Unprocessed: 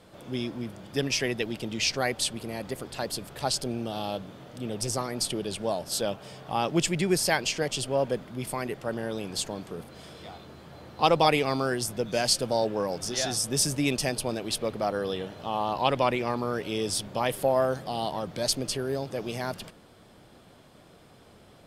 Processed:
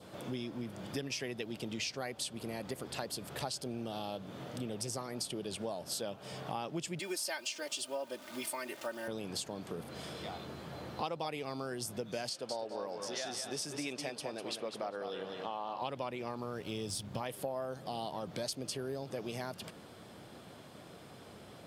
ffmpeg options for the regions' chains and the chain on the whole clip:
-filter_complex "[0:a]asettb=1/sr,asplit=3[a][b][c];[a]atrim=end=6.994[d];[b]atrim=start=6.99:end=9.08,asetpts=PTS-STARTPTS,afade=t=in:d=0.004:c=qsin,afade=t=out:st=2.086:d=0.004:c=qsin,highpass=f=920:p=1,aecho=1:1:3.3:0.98,atrim=end_sample=92169,acrusher=bits=9:dc=4:mix=0:aa=0.000001[e];[c]atrim=start=9.076[f];[d][e]acrossfade=d=0.004:c1=hsin:c2=qsin[g];[g][f]acrossfade=d=0.004:c1=qsin:c2=hsin,asettb=1/sr,asplit=3[h][i][j];[h]atrim=end=12.294[k];[i]atrim=start=12.29:end=15.82,asetpts=PTS-STARTPTS,afade=t=in:d=0.004:c=qsin,afade=t=out:st=3.526:d=0.004:c=qsin,highpass=f=520:p=1,aemphasis=mode=reproduction:type=50kf,aecho=1:1:200|400|600:0.398|0.0717|0.0129,atrim=end_sample=155673[l];[j]atrim=start=15.816[m];[k][l]acrossfade=d=0.004:c1=hsin:c2=qsin[n];[n][m]acrossfade=d=0.004:c1=qsin:c2=hsin,asettb=1/sr,asplit=3[o][p][q];[o]atrim=end=16.344[r];[p]atrim=start=16.34:end=17.21,asetpts=PTS-STARTPTS,afade=t=in:d=0.004:c=qsin,afade=t=out:st=0.866:d=0.004:c=qsin,aeval=exprs='sgn(val(0))*max(abs(val(0))-0.00282,0)':c=same,asubboost=boost=9.5:cutoff=210[s];[q]atrim=start=17.206[t];[r][s]acrossfade=d=0.004:c1=hsin:c2=qsin[u];[u][t]acrossfade=d=0.004:c1=qsin:c2=hsin,highpass=86,adynamicequalizer=threshold=0.00501:dfrequency=1900:dqfactor=2.1:tfrequency=1900:tqfactor=2.1:attack=5:release=100:ratio=0.375:range=2:mode=cutabove:tftype=bell,acompressor=threshold=-39dB:ratio=5,volume=2dB"

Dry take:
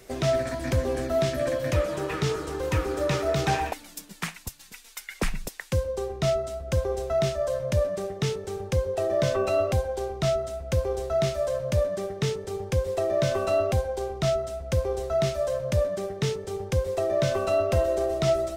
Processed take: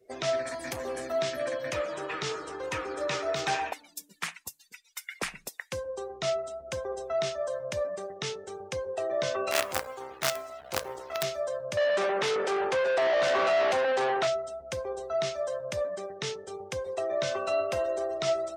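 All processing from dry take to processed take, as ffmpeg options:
-filter_complex "[0:a]asettb=1/sr,asplit=3[a][b][c];[a]atrim=end=0.464[d];[b]atrim=start=0.46:end=1.12,asetpts=PTS-STARTPTS,afade=t=in:d=0.004:c=qsin,afade=t=out:st=0.656:d=0.004:c=qsin,highshelf=f=9.9k:g=9.5,asoftclip=type=hard:threshold=-22.5dB,bandreject=f=1.5k:w=17[e];[c]atrim=start=1.116[f];[d][e]acrossfade=d=0.004:c1=hsin:c2=qsin[g];[g][f]acrossfade=d=0.004:c1=qsin:c2=hsin,asettb=1/sr,asplit=3[h][i][j];[h]atrim=end=9.514[k];[i]atrim=start=9.51:end=11.23,asetpts=PTS-STARTPTS,afade=t=in:d=0.004:c=qsin,afade=t=out:st=1.716:d=0.004:c=qsin,bandreject=f=60:t=h:w=6,bandreject=f=120:t=h:w=6,bandreject=f=180:t=h:w=6,bandreject=f=240:t=h:w=6,bandreject=f=300:t=h:w=6,acrusher=bits=4:dc=4:mix=0:aa=0.000001[l];[j]atrim=start=11.226[m];[k][l]acrossfade=d=0.004:c1=hsin:c2=qsin[n];[n][m]acrossfade=d=0.004:c1=qsin:c2=hsin,asettb=1/sr,asplit=3[o][p][q];[o]atrim=end=11.774[r];[p]atrim=start=11.77:end=14.27,asetpts=PTS-STARTPTS,afade=t=in:d=0.004:c=qsin,afade=t=out:st=2.496:d=0.004:c=qsin,equalizer=f=64:w=0.79:g=-8,bandreject=f=60:t=h:w=6,bandreject=f=120:t=h:w=6,bandreject=f=180:t=h:w=6,bandreject=f=240:t=h:w=6,bandreject=f=300:t=h:w=6,bandreject=f=360:t=h:w=6,bandreject=f=420:t=h:w=6,asplit=2[s][t];[t]highpass=f=720:p=1,volume=33dB,asoftclip=type=tanh:threshold=-14dB[u];[s][u]amix=inputs=2:normalize=0,lowpass=f=1.5k:p=1,volume=-6dB[v];[q]atrim=start=14.266[w];[r][v]acrossfade=d=0.004:c1=hsin:c2=qsin[x];[x][w]acrossfade=d=0.004:c1=qsin:c2=hsin,afftdn=nr=26:nf=-47,highpass=f=850:p=1"

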